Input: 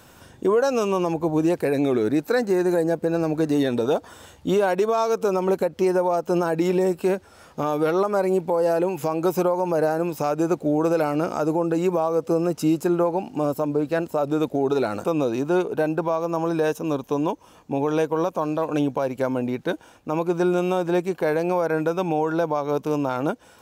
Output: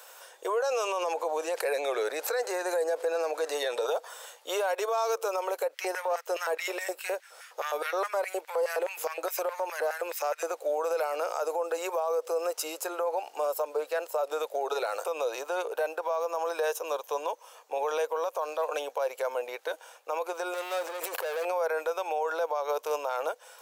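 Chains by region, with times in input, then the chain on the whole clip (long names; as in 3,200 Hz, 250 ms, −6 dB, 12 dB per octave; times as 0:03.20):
0:00.58–0:03.87: low-pass filter 11,000 Hz + envelope flattener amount 50%
0:05.74–0:10.52: gain on one half-wave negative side −3 dB + auto-filter high-pass square 4.8 Hz 200–1,900 Hz
0:20.54–0:21.45: high-shelf EQ 11,000 Hz +5 dB + leveller curve on the samples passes 3 + compressor whose output falls as the input rises −27 dBFS
whole clip: elliptic high-pass filter 490 Hz, stop band 60 dB; brickwall limiter −21.5 dBFS; high-shelf EQ 6,100 Hz +7 dB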